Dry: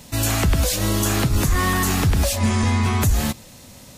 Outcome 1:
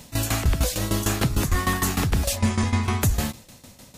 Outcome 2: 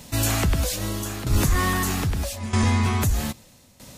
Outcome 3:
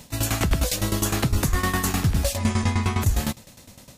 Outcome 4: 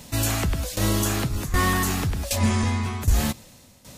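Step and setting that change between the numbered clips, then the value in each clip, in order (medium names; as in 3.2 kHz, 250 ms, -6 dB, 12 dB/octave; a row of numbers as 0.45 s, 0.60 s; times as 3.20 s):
tremolo, rate: 6.6 Hz, 0.79 Hz, 9.8 Hz, 1.3 Hz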